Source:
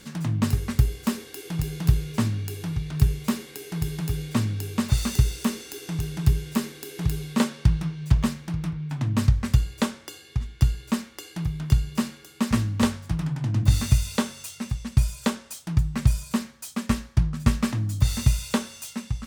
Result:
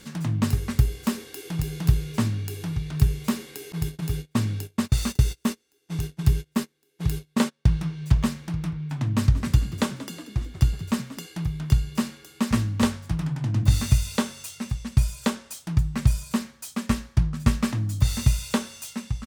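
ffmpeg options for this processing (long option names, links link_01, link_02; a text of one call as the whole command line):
ffmpeg -i in.wav -filter_complex "[0:a]asettb=1/sr,asplit=3[link_01][link_02][link_03];[link_01]atrim=end=3.724[link_04];[link_02]atrim=start=3.72:end=7.79,asetpts=PTS-STARTPTS,afade=type=in:duration=0.004:curve=qsin,afade=type=out:start_time=4.066:duration=0.004:curve=qsin,agate=range=-30dB:threshold=-31dB:ratio=16:release=100:detection=peak[link_05];[link_03]atrim=start=7.786[link_06];[link_04][link_05]acrossfade=duration=0.004:curve1=hsin:curve2=qsin[link_07];[link_07][link_06]acrossfade=duration=0.004:curve1=qsin:curve2=hsin,asplit=3[link_08][link_09][link_10];[link_08]afade=type=out:start_time=9.25:duration=0.02[link_11];[link_09]asplit=8[link_12][link_13][link_14][link_15][link_16][link_17][link_18][link_19];[link_13]adelay=183,afreqshift=38,volume=-16dB[link_20];[link_14]adelay=366,afreqshift=76,volume=-19.7dB[link_21];[link_15]adelay=549,afreqshift=114,volume=-23.5dB[link_22];[link_16]adelay=732,afreqshift=152,volume=-27.2dB[link_23];[link_17]adelay=915,afreqshift=190,volume=-31dB[link_24];[link_18]adelay=1098,afreqshift=228,volume=-34.7dB[link_25];[link_19]adelay=1281,afreqshift=266,volume=-38.5dB[link_26];[link_12][link_20][link_21][link_22][link_23][link_24][link_25][link_26]amix=inputs=8:normalize=0,afade=type=in:start_time=9.25:duration=0.02,afade=type=out:start_time=11.25:duration=0.02[link_27];[link_10]afade=type=in:start_time=11.25:duration=0.02[link_28];[link_11][link_27][link_28]amix=inputs=3:normalize=0" out.wav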